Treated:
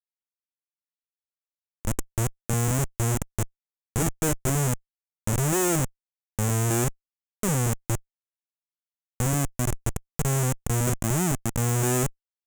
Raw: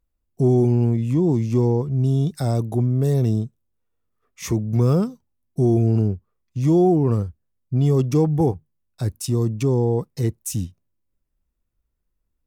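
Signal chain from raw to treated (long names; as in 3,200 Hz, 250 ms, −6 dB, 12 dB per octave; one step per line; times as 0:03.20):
played backwards from end to start
comparator with hysteresis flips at −18 dBFS
high shelf with overshoot 5,700 Hz +8.5 dB, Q 3
level −2.5 dB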